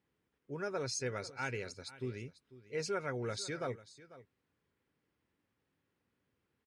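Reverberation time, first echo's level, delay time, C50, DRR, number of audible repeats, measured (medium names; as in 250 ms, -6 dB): no reverb, -17.5 dB, 495 ms, no reverb, no reverb, 1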